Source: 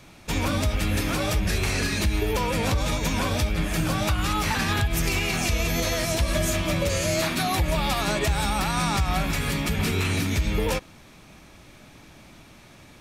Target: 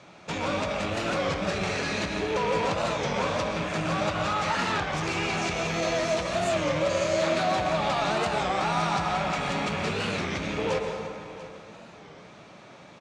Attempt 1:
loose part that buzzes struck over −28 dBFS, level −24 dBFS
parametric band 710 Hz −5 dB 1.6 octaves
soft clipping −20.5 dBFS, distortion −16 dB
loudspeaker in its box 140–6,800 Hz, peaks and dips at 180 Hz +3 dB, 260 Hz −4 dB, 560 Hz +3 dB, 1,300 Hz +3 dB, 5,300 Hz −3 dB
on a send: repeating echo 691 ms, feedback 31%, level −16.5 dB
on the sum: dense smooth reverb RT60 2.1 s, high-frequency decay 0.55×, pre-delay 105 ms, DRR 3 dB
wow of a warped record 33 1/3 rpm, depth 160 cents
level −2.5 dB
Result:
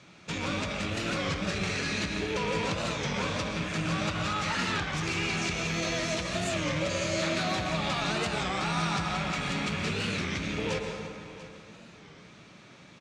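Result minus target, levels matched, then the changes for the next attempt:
1,000 Hz band −3.5 dB
change: parametric band 710 Hz +5 dB 1.6 octaves

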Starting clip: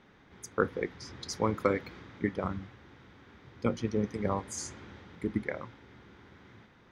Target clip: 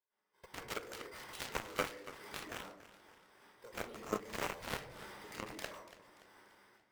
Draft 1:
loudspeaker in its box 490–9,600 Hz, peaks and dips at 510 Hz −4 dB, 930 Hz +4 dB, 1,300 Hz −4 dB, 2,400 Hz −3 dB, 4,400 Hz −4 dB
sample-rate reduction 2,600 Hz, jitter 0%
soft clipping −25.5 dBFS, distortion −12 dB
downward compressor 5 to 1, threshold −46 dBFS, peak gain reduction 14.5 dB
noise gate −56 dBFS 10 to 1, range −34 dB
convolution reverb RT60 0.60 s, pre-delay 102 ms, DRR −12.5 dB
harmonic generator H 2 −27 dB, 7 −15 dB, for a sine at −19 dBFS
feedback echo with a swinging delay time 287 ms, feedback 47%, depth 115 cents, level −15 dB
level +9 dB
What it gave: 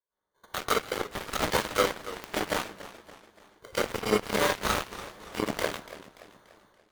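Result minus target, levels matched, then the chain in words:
sample-rate reduction: distortion +9 dB; downward compressor: peak gain reduction −5 dB
loudspeaker in its box 490–9,600 Hz, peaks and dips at 510 Hz −4 dB, 930 Hz +4 dB, 1,300 Hz −4 dB, 2,400 Hz −3 dB, 4,400 Hz −4 dB
sample-rate reduction 6,900 Hz, jitter 0%
soft clipping −25.5 dBFS, distortion −12 dB
downward compressor 5 to 1, threshold −52.5 dBFS, peak gain reduction 19.5 dB
noise gate −56 dBFS 10 to 1, range −34 dB
convolution reverb RT60 0.60 s, pre-delay 102 ms, DRR −12.5 dB
harmonic generator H 2 −27 dB, 7 −15 dB, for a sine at −19 dBFS
feedback echo with a swinging delay time 287 ms, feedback 47%, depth 115 cents, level −15 dB
level +9 dB

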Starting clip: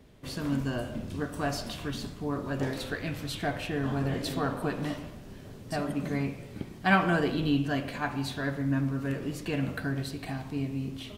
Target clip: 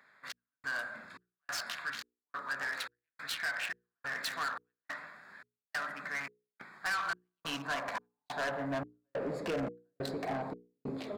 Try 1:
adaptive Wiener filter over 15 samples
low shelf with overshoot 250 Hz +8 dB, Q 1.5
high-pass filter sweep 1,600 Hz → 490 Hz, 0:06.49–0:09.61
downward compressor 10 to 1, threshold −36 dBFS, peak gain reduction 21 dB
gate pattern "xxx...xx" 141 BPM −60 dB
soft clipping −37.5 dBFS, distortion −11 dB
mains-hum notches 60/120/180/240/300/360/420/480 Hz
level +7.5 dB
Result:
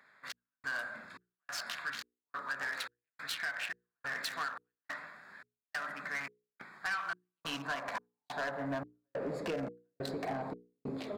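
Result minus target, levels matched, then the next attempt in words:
downward compressor: peak gain reduction +6 dB
adaptive Wiener filter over 15 samples
low shelf with overshoot 250 Hz +8 dB, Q 1.5
high-pass filter sweep 1,600 Hz → 490 Hz, 0:06.49–0:09.61
downward compressor 10 to 1, threshold −29.5 dBFS, peak gain reduction 15.5 dB
gate pattern "xxx...xx" 141 BPM −60 dB
soft clipping −37.5 dBFS, distortion −7 dB
mains-hum notches 60/120/180/240/300/360/420/480 Hz
level +7.5 dB

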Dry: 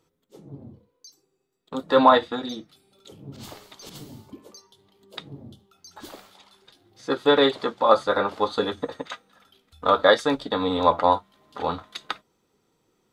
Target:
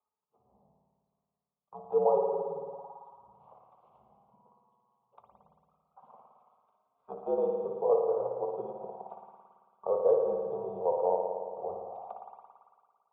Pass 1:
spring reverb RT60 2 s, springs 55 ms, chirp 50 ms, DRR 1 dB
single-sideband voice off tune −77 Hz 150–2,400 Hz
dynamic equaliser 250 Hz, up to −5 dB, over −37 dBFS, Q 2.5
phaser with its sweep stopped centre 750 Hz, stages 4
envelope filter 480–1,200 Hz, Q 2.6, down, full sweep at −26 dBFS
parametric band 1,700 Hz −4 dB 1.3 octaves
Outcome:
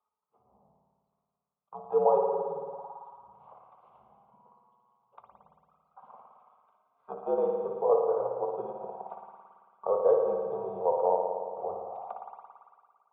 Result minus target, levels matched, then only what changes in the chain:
2,000 Hz band +8.5 dB
change: parametric band 1,700 Hz −15.5 dB 1.3 octaves

